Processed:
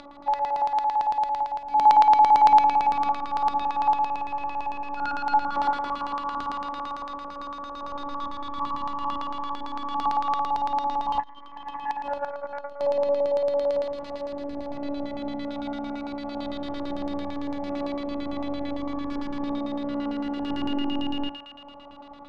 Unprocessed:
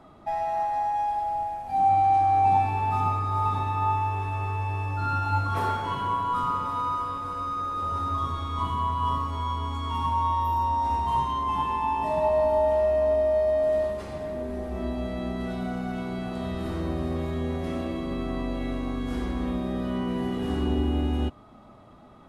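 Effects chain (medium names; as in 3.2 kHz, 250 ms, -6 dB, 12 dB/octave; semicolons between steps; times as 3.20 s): upward compressor, threshold -38 dBFS; thinning echo 78 ms, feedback 78%, high-pass 670 Hz, level -5 dB; robot voice 284 Hz; LFO low-pass square 8.9 Hz 890–4300 Hz; 11.19–12.81 s: transformer saturation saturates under 470 Hz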